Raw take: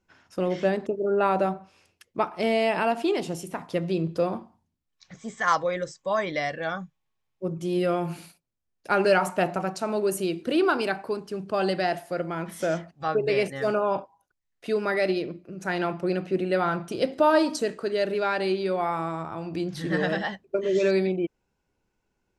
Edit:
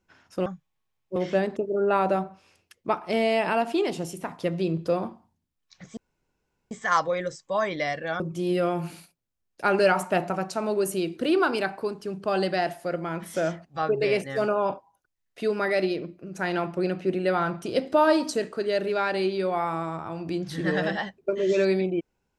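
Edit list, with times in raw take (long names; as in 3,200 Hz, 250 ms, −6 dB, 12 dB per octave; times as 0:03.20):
0:05.27: splice in room tone 0.74 s
0:06.76–0:07.46: move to 0:00.46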